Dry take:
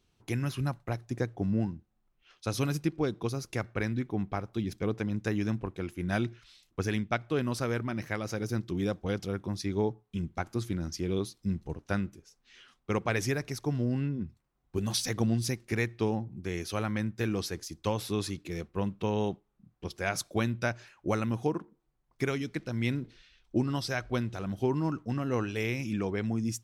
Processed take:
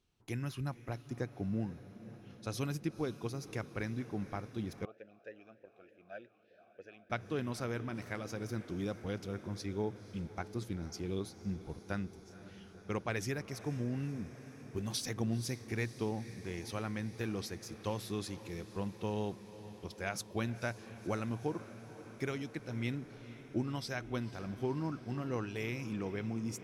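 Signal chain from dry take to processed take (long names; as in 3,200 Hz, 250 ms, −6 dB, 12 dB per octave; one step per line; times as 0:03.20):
feedback delay with all-pass diffusion 497 ms, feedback 75%, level −15.5 dB
0:04.85–0:07.10: formant filter swept between two vowels a-e 3.3 Hz
level −7 dB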